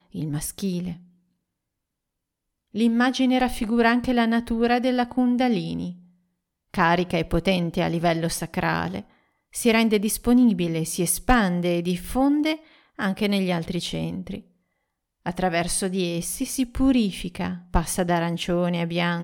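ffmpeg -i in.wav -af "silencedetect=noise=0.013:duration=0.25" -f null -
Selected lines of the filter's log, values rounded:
silence_start: 0.96
silence_end: 2.74 | silence_duration: 1.78
silence_start: 5.93
silence_end: 6.74 | silence_duration: 0.81
silence_start: 9.01
silence_end: 9.53 | silence_duration: 0.52
silence_start: 12.56
silence_end: 12.99 | silence_duration: 0.43
silence_start: 14.40
silence_end: 15.26 | silence_duration: 0.86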